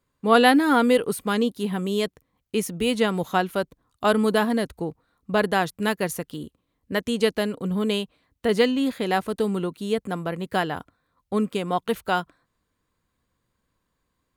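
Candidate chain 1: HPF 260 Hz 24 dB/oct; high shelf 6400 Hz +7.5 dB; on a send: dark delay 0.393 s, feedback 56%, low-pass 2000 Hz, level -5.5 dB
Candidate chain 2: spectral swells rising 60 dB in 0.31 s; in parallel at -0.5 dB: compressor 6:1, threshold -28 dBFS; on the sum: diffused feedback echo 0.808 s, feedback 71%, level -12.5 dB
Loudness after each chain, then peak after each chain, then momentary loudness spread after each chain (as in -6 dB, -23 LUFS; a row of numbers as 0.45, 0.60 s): -24.0, -21.0 LUFS; -1.0, -2.0 dBFS; 13, 15 LU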